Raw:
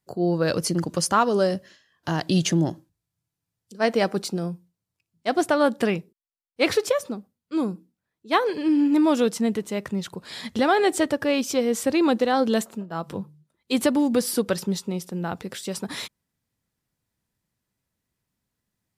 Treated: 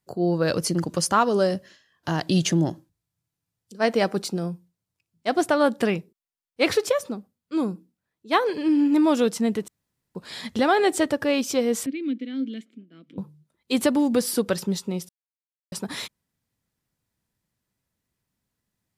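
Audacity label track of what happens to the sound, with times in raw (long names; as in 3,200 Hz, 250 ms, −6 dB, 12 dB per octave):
9.680000	10.150000	fill with room tone
11.860000	13.180000	formant filter i
15.090000	15.720000	silence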